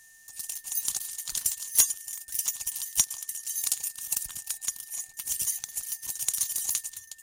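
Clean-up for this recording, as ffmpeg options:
ffmpeg -i in.wav -af "bandreject=frequency=1800:width=30" out.wav

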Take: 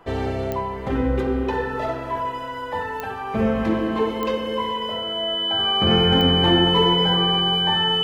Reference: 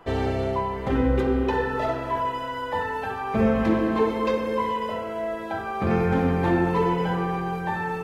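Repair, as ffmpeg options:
ffmpeg -i in.wav -af "adeclick=threshold=4,bandreject=frequency=3000:width=30,asetnsamples=nb_out_samples=441:pad=0,asendcmd='5.59 volume volume -3.5dB',volume=0dB" out.wav

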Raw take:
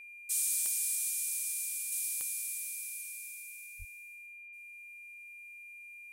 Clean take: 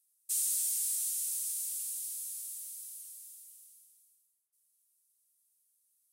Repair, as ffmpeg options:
ffmpeg -i in.wav -filter_complex "[0:a]adeclick=threshold=4,bandreject=frequency=2400:width=30,asplit=3[link_01][link_02][link_03];[link_01]afade=type=out:start_time=3.78:duration=0.02[link_04];[link_02]highpass=frequency=140:width=0.5412,highpass=frequency=140:width=1.3066,afade=type=in:start_time=3.78:duration=0.02,afade=type=out:start_time=3.9:duration=0.02[link_05];[link_03]afade=type=in:start_time=3.9:duration=0.02[link_06];[link_04][link_05][link_06]amix=inputs=3:normalize=0,asetnsamples=nb_out_samples=441:pad=0,asendcmd='1.92 volume volume -4dB',volume=0dB" out.wav

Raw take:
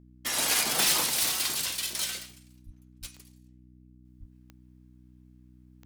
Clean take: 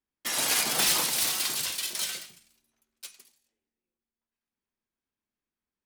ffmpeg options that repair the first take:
ffmpeg -i in.wav -filter_complex "[0:a]adeclick=threshold=4,bandreject=frequency=62.1:width_type=h:width=4,bandreject=frequency=124.2:width_type=h:width=4,bandreject=frequency=186.3:width_type=h:width=4,bandreject=frequency=248.4:width_type=h:width=4,bandreject=frequency=310.5:width_type=h:width=4,asplit=3[link_01][link_02][link_03];[link_01]afade=type=out:start_time=2.65:duration=0.02[link_04];[link_02]highpass=frequency=140:width=0.5412,highpass=frequency=140:width=1.3066,afade=type=in:start_time=2.65:duration=0.02,afade=type=out:start_time=2.77:duration=0.02[link_05];[link_03]afade=type=in:start_time=2.77:duration=0.02[link_06];[link_04][link_05][link_06]amix=inputs=3:normalize=0,asplit=3[link_07][link_08][link_09];[link_07]afade=type=out:start_time=3:duration=0.02[link_10];[link_08]highpass=frequency=140:width=0.5412,highpass=frequency=140:width=1.3066,afade=type=in:start_time=3:duration=0.02,afade=type=out:start_time=3.12:duration=0.02[link_11];[link_09]afade=type=in:start_time=3.12:duration=0.02[link_12];[link_10][link_11][link_12]amix=inputs=3:normalize=0,asplit=3[link_13][link_14][link_15];[link_13]afade=type=out:start_time=4.19:duration=0.02[link_16];[link_14]highpass=frequency=140:width=0.5412,highpass=frequency=140:width=1.3066,afade=type=in:start_time=4.19:duration=0.02,afade=type=out:start_time=4.31:duration=0.02[link_17];[link_15]afade=type=in:start_time=4.31:duration=0.02[link_18];[link_16][link_17][link_18]amix=inputs=3:normalize=0,asetnsamples=nb_out_samples=441:pad=0,asendcmd='4.05 volume volume -9dB',volume=0dB" out.wav

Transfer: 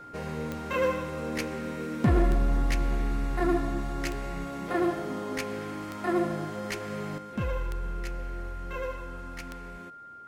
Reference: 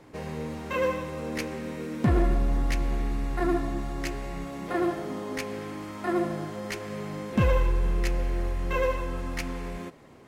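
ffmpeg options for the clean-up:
ffmpeg -i in.wav -af "adeclick=threshold=4,bandreject=frequency=1400:width=30,asetnsamples=nb_out_samples=441:pad=0,asendcmd='7.18 volume volume 8.5dB',volume=0dB" out.wav

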